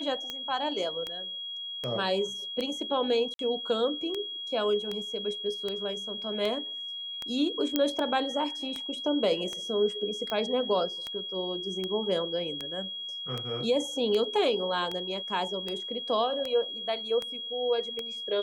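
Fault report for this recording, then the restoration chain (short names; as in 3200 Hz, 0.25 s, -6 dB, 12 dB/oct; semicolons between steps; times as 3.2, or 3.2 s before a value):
tick 78 rpm -19 dBFS
tone 3300 Hz -35 dBFS
3.34–3.39 gap 52 ms
7.76 pop -11 dBFS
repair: de-click; notch 3300 Hz, Q 30; interpolate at 3.34, 52 ms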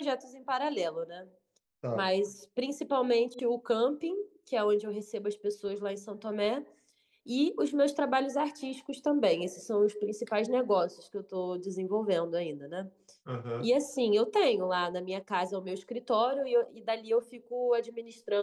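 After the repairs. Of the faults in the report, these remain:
none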